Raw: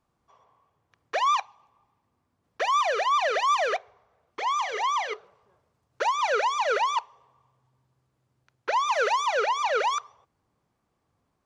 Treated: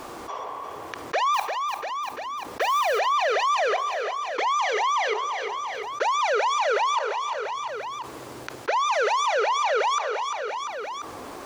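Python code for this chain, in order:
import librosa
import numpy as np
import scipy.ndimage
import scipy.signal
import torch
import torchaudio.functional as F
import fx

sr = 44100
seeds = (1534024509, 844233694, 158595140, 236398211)

p1 = fx.low_shelf_res(x, sr, hz=230.0, db=-12.0, q=1.5)
p2 = fx.mod_noise(p1, sr, seeds[0], snr_db=23, at=(1.33, 2.98), fade=0.02)
p3 = p2 + fx.echo_feedback(p2, sr, ms=345, feedback_pct=40, wet_db=-17.5, dry=0)
p4 = fx.env_flatten(p3, sr, amount_pct=70)
y = p4 * 10.0 ** (-1.5 / 20.0)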